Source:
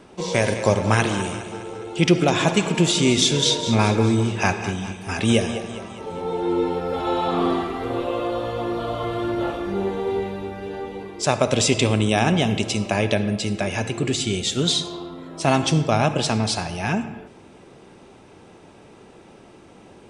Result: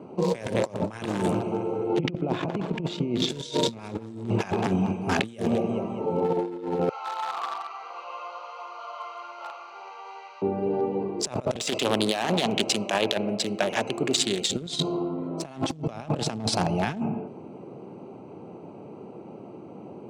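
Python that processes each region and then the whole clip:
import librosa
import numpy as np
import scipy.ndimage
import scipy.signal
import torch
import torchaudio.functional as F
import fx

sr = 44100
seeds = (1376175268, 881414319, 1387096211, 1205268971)

y = fx.chain(x, sr, fx.air_absorb(metres=170.0),
    fx.over_compress(threshold_db=-24.0, ratio=-0.5), at=(1.89, 3.29))
y = fx.chain(y, sr, fx.delta_mod(bps=32000, step_db=-33.5),
    fx.highpass(hz=1100.0, slope=24), at=(6.89, 10.42))
y = fx.chain(y, sr, fx.highpass(hz=750.0, slope=6),
    fx.overload_stage(gain_db=15.5),
    fx.doppler_dist(depth_ms=0.21), at=(11.59, 14.49))
y = fx.wiener(y, sr, points=25)
y = scipy.signal.sosfilt(scipy.signal.butter(4, 120.0, 'highpass', fs=sr, output='sos'), y)
y = fx.over_compress(y, sr, threshold_db=-28.0, ratio=-0.5)
y = F.gain(torch.from_numpy(y), 2.0).numpy()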